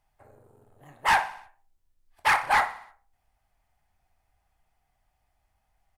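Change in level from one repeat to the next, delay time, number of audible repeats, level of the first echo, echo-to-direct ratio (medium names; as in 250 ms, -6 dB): -5.0 dB, 61 ms, 4, -16.0 dB, -14.5 dB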